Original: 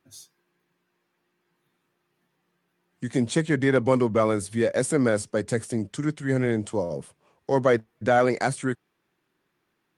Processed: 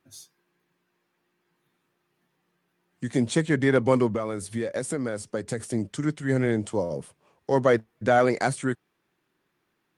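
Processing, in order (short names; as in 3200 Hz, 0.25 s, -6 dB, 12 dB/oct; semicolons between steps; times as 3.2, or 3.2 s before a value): 4.08–5.6 compressor 10:1, threshold -25 dBFS, peak gain reduction 9.5 dB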